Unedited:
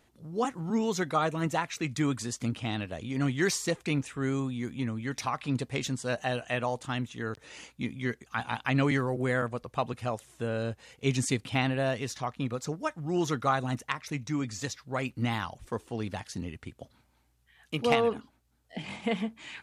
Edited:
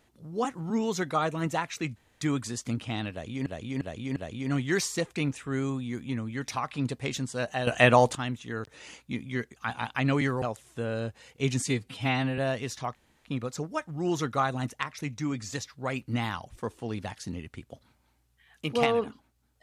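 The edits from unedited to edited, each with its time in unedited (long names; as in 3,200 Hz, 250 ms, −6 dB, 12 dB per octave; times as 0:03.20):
0:01.96: splice in room tone 0.25 s
0:02.86–0:03.21: repeat, 4 plays
0:06.37–0:06.85: clip gain +11.5 dB
0:09.12–0:10.05: remove
0:11.29–0:11.77: time-stretch 1.5×
0:12.34: splice in room tone 0.30 s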